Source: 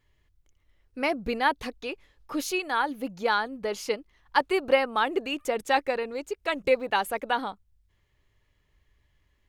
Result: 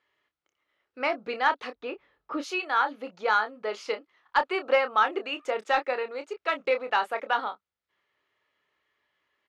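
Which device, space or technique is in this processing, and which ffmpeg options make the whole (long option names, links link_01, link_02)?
intercom: -filter_complex "[0:a]highpass=430,lowpass=4000,equalizer=frequency=1300:width_type=o:width=0.27:gain=7,asoftclip=type=tanh:threshold=-10dB,asplit=2[link_01][link_02];[link_02]adelay=28,volume=-9dB[link_03];[link_01][link_03]amix=inputs=2:normalize=0,asplit=3[link_04][link_05][link_06];[link_04]afade=type=out:start_time=1.74:duration=0.02[link_07];[link_05]aemphasis=mode=reproduction:type=riaa,afade=type=in:start_time=1.74:duration=0.02,afade=type=out:start_time=2.42:duration=0.02[link_08];[link_06]afade=type=in:start_time=2.42:duration=0.02[link_09];[link_07][link_08][link_09]amix=inputs=3:normalize=0"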